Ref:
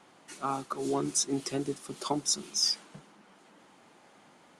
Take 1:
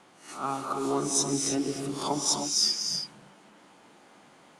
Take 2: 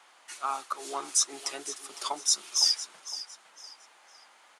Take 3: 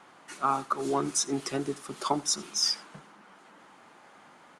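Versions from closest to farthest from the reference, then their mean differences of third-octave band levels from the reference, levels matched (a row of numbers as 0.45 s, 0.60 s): 3, 1, 2; 2.0 dB, 4.0 dB, 7.5 dB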